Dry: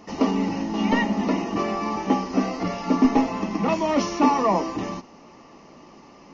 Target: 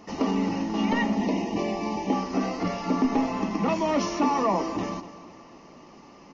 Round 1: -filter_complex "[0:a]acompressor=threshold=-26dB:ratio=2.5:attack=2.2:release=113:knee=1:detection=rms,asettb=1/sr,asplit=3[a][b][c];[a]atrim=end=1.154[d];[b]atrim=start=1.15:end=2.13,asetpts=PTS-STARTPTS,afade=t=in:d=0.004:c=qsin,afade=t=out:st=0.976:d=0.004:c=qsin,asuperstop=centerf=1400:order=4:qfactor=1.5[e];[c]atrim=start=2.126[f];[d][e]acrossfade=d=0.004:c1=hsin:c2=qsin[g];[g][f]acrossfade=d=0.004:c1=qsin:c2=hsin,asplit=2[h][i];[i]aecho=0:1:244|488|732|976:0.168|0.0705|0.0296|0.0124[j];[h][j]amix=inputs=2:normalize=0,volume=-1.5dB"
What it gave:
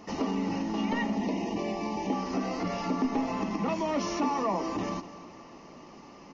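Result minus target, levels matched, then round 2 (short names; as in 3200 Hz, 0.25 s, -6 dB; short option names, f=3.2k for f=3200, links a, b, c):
compressor: peak gain reduction +5 dB
-filter_complex "[0:a]acompressor=threshold=-17.5dB:ratio=2.5:attack=2.2:release=113:knee=1:detection=rms,asettb=1/sr,asplit=3[a][b][c];[a]atrim=end=1.154[d];[b]atrim=start=1.15:end=2.13,asetpts=PTS-STARTPTS,afade=t=in:d=0.004:c=qsin,afade=t=out:st=0.976:d=0.004:c=qsin,asuperstop=centerf=1400:order=4:qfactor=1.5[e];[c]atrim=start=2.126[f];[d][e]acrossfade=d=0.004:c1=hsin:c2=qsin[g];[g][f]acrossfade=d=0.004:c1=qsin:c2=hsin,asplit=2[h][i];[i]aecho=0:1:244|488|732|976:0.168|0.0705|0.0296|0.0124[j];[h][j]amix=inputs=2:normalize=0,volume=-1.5dB"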